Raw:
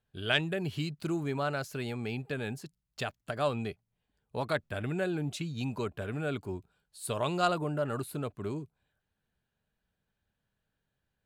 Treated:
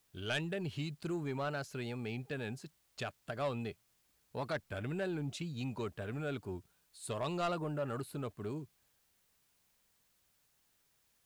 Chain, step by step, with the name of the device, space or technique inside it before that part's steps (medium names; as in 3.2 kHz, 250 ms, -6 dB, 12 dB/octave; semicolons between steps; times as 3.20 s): compact cassette (saturation -24.5 dBFS, distortion -15 dB; low-pass 9.8 kHz; wow and flutter; white noise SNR 34 dB); trim -4 dB